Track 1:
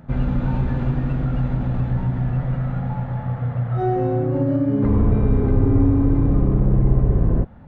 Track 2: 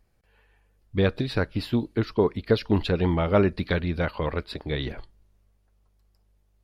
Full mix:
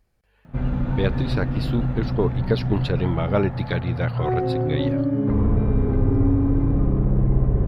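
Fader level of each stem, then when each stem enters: -2.5 dB, -1.0 dB; 0.45 s, 0.00 s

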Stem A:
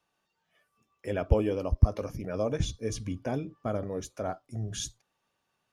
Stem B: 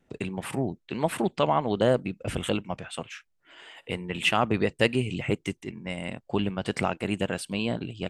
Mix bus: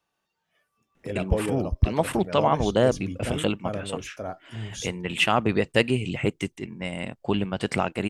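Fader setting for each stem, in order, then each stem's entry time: -0.5 dB, +2.0 dB; 0.00 s, 0.95 s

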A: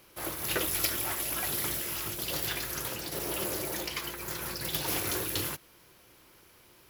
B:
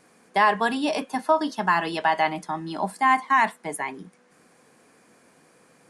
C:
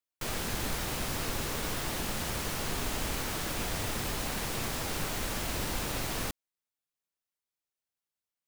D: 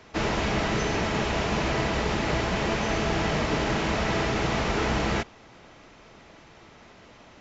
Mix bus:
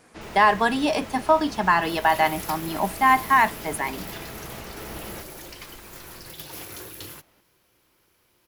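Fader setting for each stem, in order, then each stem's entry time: -7.0 dB, +2.0 dB, -13.5 dB, -13.5 dB; 1.65 s, 0.00 s, 0.00 s, 0.00 s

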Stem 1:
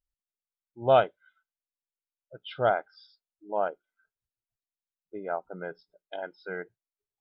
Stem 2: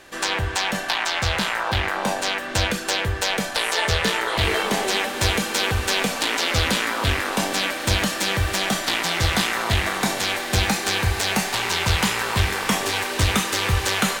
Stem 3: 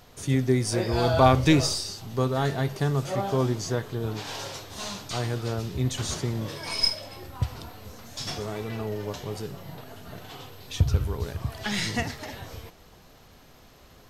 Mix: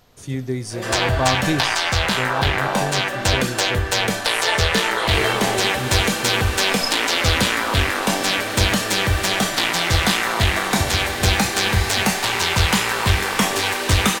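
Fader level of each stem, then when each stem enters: -9.5 dB, +3.0 dB, -2.5 dB; 0.00 s, 0.70 s, 0.00 s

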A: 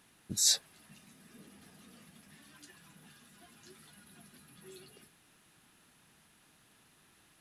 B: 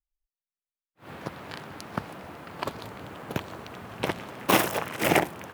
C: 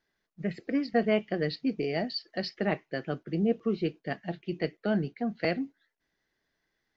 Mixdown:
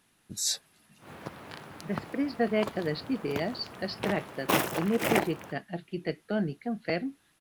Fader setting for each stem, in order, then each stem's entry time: -3.0 dB, -4.5 dB, -1.5 dB; 0.00 s, 0.00 s, 1.45 s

